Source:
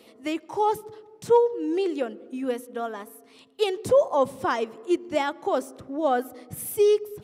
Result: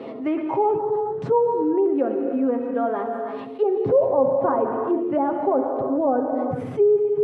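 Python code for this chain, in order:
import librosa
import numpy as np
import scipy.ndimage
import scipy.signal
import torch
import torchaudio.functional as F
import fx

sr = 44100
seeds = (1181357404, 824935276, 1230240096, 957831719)

y = scipy.signal.sosfilt(scipy.signal.butter(2, 110.0, 'highpass', fs=sr, output='sos'), x)
y = fx.env_lowpass_down(y, sr, base_hz=860.0, full_db=-20.0)
y = scipy.signal.sosfilt(scipy.signal.butter(2, 1200.0, 'lowpass', fs=sr, output='sos'), y)
y = y + 0.44 * np.pad(y, (int(7.4 * sr / 1000.0), 0))[:len(y)]
y = fx.rev_gated(y, sr, seeds[0], gate_ms=450, shape='flat', drr_db=6.0)
y = fx.env_flatten(y, sr, amount_pct=50)
y = y * 10.0 ** (-1.5 / 20.0)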